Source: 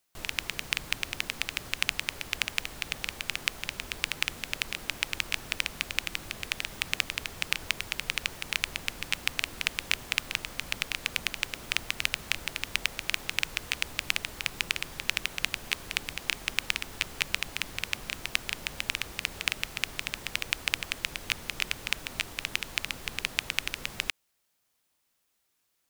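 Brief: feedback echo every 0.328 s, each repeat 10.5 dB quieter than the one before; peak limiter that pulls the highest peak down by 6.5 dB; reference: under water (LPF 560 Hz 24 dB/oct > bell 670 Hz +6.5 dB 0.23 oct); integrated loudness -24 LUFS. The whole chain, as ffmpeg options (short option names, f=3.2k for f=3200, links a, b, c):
-af "alimiter=limit=-8.5dB:level=0:latency=1,lowpass=f=560:w=0.5412,lowpass=f=560:w=1.3066,equalizer=f=670:t=o:w=0.23:g=6.5,aecho=1:1:328|656|984:0.299|0.0896|0.0269,volume=26dB"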